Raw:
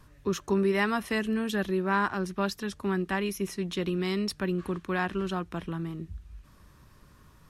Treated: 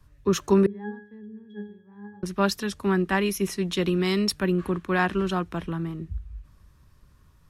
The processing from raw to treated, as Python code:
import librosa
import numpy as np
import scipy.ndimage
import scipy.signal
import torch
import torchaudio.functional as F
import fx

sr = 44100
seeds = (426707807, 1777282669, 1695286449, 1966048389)

y = fx.octave_resonator(x, sr, note='G#', decay_s=0.51, at=(0.66, 2.23))
y = fx.dynamic_eq(y, sr, hz=5200.0, q=1.0, threshold_db=-55.0, ratio=4.0, max_db=-6, at=(4.3, 4.88))
y = fx.band_widen(y, sr, depth_pct=40)
y = y * librosa.db_to_amplitude(5.5)